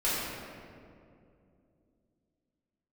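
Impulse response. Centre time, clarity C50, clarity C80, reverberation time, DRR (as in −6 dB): 143 ms, −3.0 dB, −1.0 dB, 2.5 s, −11.0 dB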